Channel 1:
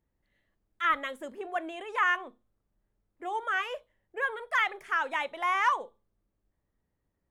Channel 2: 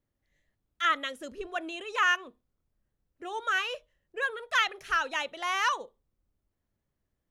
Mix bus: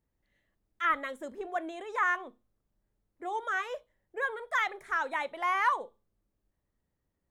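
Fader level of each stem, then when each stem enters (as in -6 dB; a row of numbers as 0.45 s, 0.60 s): -2.0 dB, -13.5 dB; 0.00 s, 0.00 s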